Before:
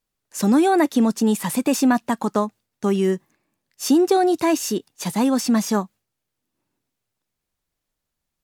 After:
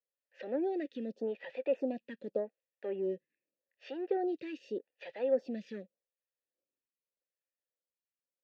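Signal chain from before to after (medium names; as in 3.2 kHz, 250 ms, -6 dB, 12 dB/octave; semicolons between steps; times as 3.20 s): low-pass 4.2 kHz 24 dB/octave; dynamic bell 1.8 kHz, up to -7 dB, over -38 dBFS, Q 1; waveshaping leveller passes 1; vowel filter e; lamp-driven phase shifter 0.84 Hz; trim -1.5 dB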